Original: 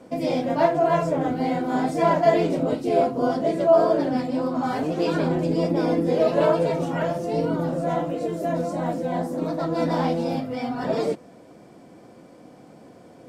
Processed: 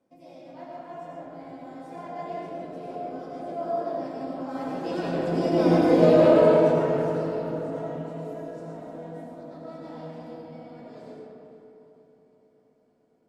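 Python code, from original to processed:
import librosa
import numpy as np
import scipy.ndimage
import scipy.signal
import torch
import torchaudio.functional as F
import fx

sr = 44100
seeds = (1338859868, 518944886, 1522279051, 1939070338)

y = fx.doppler_pass(x, sr, speed_mps=11, closest_m=3.2, pass_at_s=5.84)
y = fx.echo_feedback(y, sr, ms=451, feedback_pct=46, wet_db=-17.0)
y = fx.rev_freeverb(y, sr, rt60_s=2.9, hf_ratio=0.45, predelay_ms=55, drr_db=-4.0)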